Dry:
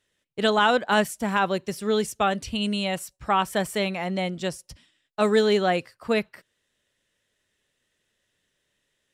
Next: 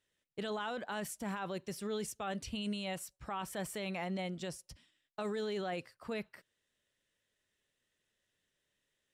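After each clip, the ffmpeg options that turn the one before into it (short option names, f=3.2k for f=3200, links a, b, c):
-af "alimiter=limit=-22dB:level=0:latency=1:release=20,volume=-8.5dB"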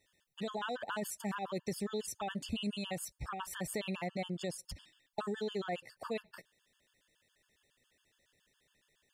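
-af "acompressor=threshold=-46dB:ratio=3,afftfilt=real='re*gt(sin(2*PI*7.2*pts/sr)*(1-2*mod(floor(b*sr/1024/890),2)),0)':imag='im*gt(sin(2*PI*7.2*pts/sr)*(1-2*mod(floor(b*sr/1024/890),2)),0)':win_size=1024:overlap=0.75,volume=11dB"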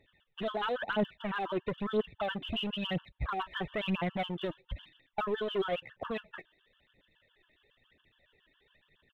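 -af "aresample=8000,asoftclip=type=hard:threshold=-34.5dB,aresample=44100,aphaser=in_gain=1:out_gain=1:delay=3.3:decay=0.55:speed=1:type=triangular,volume=5.5dB"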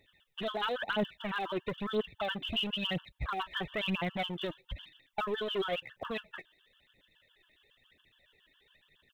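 -af "highshelf=f=2.8k:g=11,volume=-2dB"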